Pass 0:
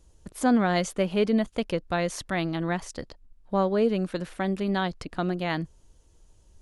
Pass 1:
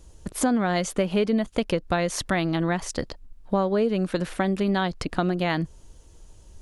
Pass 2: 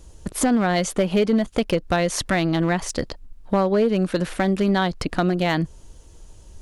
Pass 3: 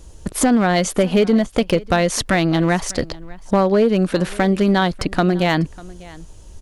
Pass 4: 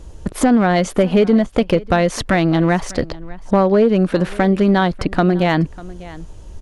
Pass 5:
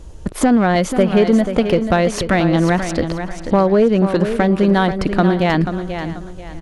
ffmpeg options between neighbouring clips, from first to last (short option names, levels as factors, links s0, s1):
-af "acompressor=threshold=0.0355:ratio=4,volume=2.66"
-af "asoftclip=type=hard:threshold=0.15,volume=1.58"
-af "aecho=1:1:596:0.0841,volume=1.58"
-filter_complex "[0:a]highshelf=f=3900:g=-11,asplit=2[s0][s1];[s1]alimiter=limit=0.133:level=0:latency=1:release=493,volume=0.75[s2];[s0][s2]amix=inputs=2:normalize=0"
-af "aecho=1:1:486|972|1458:0.355|0.103|0.0298"